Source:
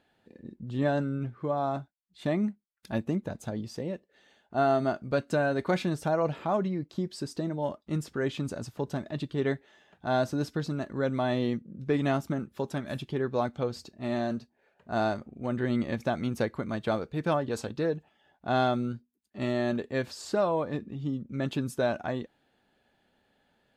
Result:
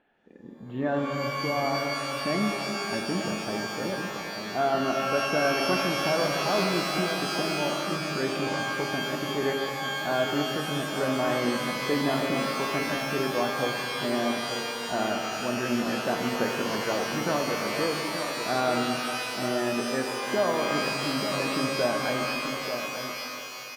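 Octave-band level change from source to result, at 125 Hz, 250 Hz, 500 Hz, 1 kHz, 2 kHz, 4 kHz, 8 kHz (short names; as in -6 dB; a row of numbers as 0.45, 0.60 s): -3.0, +1.0, +2.5, +5.0, +9.5, +13.5, +13.5 dB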